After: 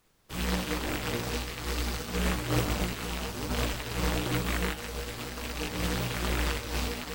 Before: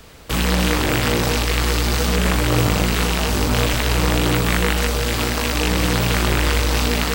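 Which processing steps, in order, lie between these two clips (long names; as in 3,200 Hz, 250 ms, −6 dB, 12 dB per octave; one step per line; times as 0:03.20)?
flanger 1.1 Hz, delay 2.7 ms, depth 9.9 ms, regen −33%
background noise pink −37 dBFS
expander for the loud parts 2.5 to 1, over −37 dBFS
level −4 dB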